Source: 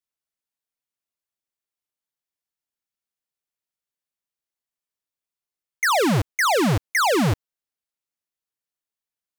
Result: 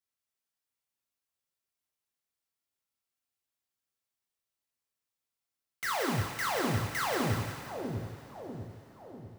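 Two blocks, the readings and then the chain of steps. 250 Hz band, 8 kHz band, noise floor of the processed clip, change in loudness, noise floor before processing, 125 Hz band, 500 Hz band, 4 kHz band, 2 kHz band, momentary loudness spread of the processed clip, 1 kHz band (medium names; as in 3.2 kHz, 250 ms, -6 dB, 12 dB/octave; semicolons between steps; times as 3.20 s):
-11.5 dB, -11.0 dB, under -85 dBFS, -12.5 dB, under -85 dBFS, -9.0 dB, -11.5 dB, -11.0 dB, -11.5 dB, 16 LU, -11.0 dB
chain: integer overflow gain 28.5 dB; on a send: two-band feedback delay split 780 Hz, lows 645 ms, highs 175 ms, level -5 dB; on the sum: two-slope reverb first 0.41 s, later 4.9 s, from -19 dB, DRR 1 dB; trim -3.5 dB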